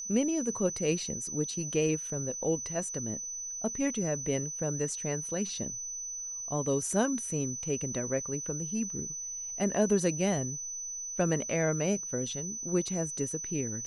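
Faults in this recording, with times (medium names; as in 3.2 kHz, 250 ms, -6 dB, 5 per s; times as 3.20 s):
whine 6 kHz -36 dBFS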